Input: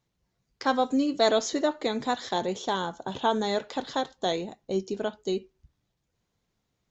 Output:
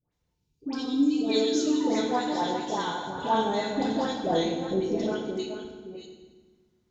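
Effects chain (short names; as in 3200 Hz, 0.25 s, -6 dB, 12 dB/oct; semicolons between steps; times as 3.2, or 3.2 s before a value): reverse delay 0.33 s, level -8.5 dB; 1.19–1.86 painted sound fall 830–2500 Hz -37 dBFS; dispersion highs, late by 0.125 s, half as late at 1200 Hz; 0.34–1.8 spectral gain 460–2300 Hz -15 dB; 3.69–5.07 low shelf 380 Hz +8.5 dB; FDN reverb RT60 1.3 s, low-frequency decay 1.6×, high-frequency decay 0.85×, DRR 0.5 dB; gain -3.5 dB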